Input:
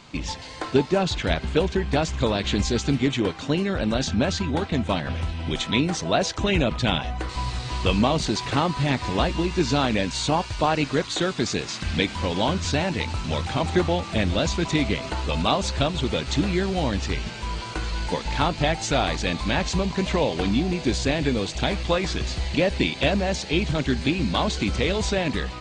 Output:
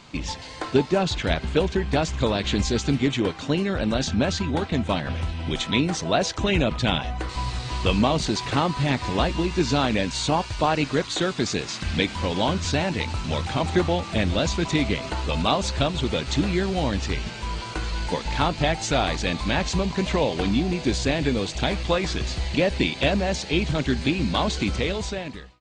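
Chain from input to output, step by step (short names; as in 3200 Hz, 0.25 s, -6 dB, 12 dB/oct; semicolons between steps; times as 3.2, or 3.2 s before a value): ending faded out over 0.95 s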